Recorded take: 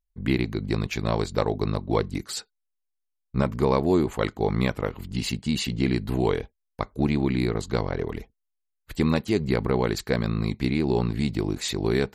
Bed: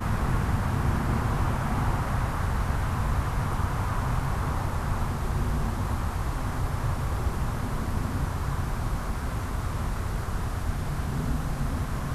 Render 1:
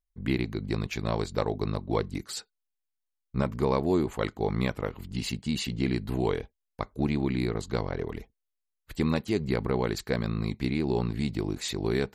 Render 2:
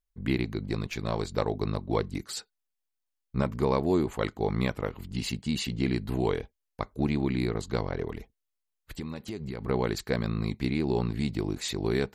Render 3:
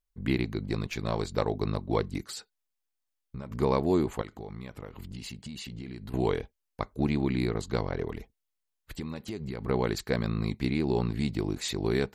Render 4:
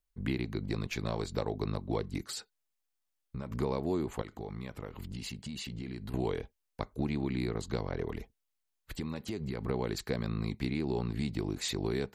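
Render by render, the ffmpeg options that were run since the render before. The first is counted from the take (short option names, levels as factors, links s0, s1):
-af "volume=0.631"
-filter_complex "[0:a]asettb=1/sr,asplit=3[s0][s1][s2];[s0]atrim=end=0.634[s3];[s1]atrim=start=0.63:end=1.25,asetpts=PTS-STARTPTS,afade=t=in:d=0.004:c=qsin,afade=t=out:st=0.616:d=0.004:c=qsin,aeval=exprs='if(lt(val(0),0),0.708*val(0),val(0))':c=same[s4];[s2]atrim=start=1.246[s5];[s3][s4]acrossfade=d=0.004:c1=hsin:c2=qsin[s6];[s6][s5]acrossfade=d=0.004:c1=qsin:c2=hsin,asettb=1/sr,asplit=3[s7][s8][s9];[s7]atrim=end=8.114[s10];[s8]atrim=start=8.11:end=9.67,asetpts=PTS-STARTPTS,afade=t=in:d=0.004:c=qsin,afade=t=out:st=1.556:d=0.004:c=qsin,acompressor=threshold=0.0251:ratio=6:attack=3.2:release=140:knee=1:detection=peak[s11];[s9]atrim=start=9.666[s12];[s10][s11]acrossfade=d=0.004:c1=hsin:c2=qsin[s13];[s13][s12]acrossfade=d=0.004:c1=qsin:c2=hsin"
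-filter_complex "[0:a]asettb=1/sr,asplit=3[s0][s1][s2];[s0]atrim=end=2.254[s3];[s1]atrim=start=2.25:end=3.51,asetpts=PTS-STARTPTS,afade=t=in:d=0.004:c=qsin,afade=t=out:st=1.256:d=0.004:c=qsin,acompressor=threshold=0.0178:ratio=6:attack=3.2:release=140:knee=1:detection=peak[s4];[s2]atrim=start=3.506[s5];[s3][s4]acrossfade=d=0.004:c1=hsin:c2=qsin[s6];[s6][s5]acrossfade=d=0.004:c1=qsin:c2=hsin,asettb=1/sr,asplit=3[s7][s8][s9];[s7]atrim=end=4.214[s10];[s8]atrim=start=4.21:end=6.14,asetpts=PTS-STARTPTS,afade=t=in:d=0.004:c=qsin,afade=t=out:st=1.926:d=0.004:c=qsin,acompressor=threshold=0.0141:ratio=6:attack=3.2:release=140:knee=1:detection=peak[s11];[s9]atrim=start=6.136[s12];[s10][s11]acrossfade=d=0.004:c1=hsin:c2=qsin[s13];[s13][s12]acrossfade=d=0.004:c1=qsin:c2=hsin"
-filter_complex "[0:a]acrossover=split=390|930|2100[s0][s1][s2][s3];[s2]alimiter=level_in=2.82:limit=0.0631:level=0:latency=1,volume=0.355[s4];[s0][s1][s4][s3]amix=inputs=4:normalize=0,acompressor=threshold=0.0282:ratio=2.5"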